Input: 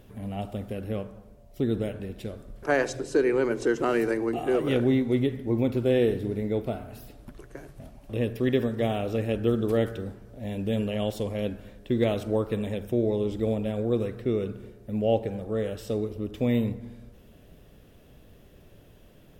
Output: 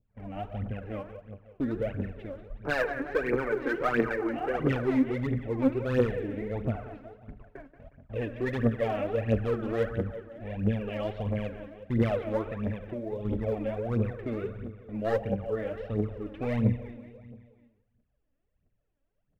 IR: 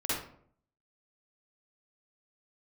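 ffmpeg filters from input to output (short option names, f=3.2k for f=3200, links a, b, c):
-filter_complex "[0:a]agate=range=-25dB:threshold=-42dB:ratio=16:detection=peak,lowpass=f=2.5k:w=0.5412,lowpass=f=2.5k:w=1.3066,equalizer=f=360:t=o:w=0.45:g=-6.5,aecho=1:1:181|362|543|724|905|1086:0.251|0.146|0.0845|0.049|0.0284|0.0165,asettb=1/sr,asplit=3[a][b][c];[a]atrim=end=12.474[d];[b]atrim=start=12.47:end=13.25,asetpts=PTS-STARTPTS,afade=t=in:d=0.004:c=qsin,afade=t=out:st=0.776:d=0.004:c=qsin,acompressor=threshold=-29dB:ratio=6[e];[c]atrim=start=13.246[f];[d][e]acrossfade=d=0.004:c1=hsin:c2=qsin[g];[g][f]acrossfade=d=0.004:c1=qsin:c2=hsin,asoftclip=type=hard:threshold=-20dB,adynamicequalizer=threshold=0.00398:dfrequency=1600:dqfactor=1.2:tfrequency=1600:tqfactor=1.2:attack=5:release=100:ratio=0.375:range=1.5:mode=boostabove:tftype=bell,aphaser=in_gain=1:out_gain=1:delay=3.8:decay=0.7:speed=1.5:type=triangular,asplit=2[h][i];[1:a]atrim=start_sample=2205[j];[i][j]afir=irnorm=-1:irlink=0,volume=-31dB[k];[h][k]amix=inputs=2:normalize=0,volume=-4dB"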